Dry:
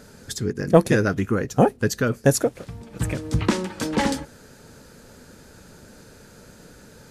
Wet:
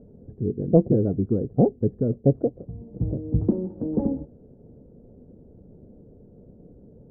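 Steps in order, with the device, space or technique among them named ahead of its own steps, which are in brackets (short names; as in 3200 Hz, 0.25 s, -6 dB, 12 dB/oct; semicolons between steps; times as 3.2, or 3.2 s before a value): under water (LPF 490 Hz 24 dB/oct; bell 720 Hz +6 dB 0.22 oct)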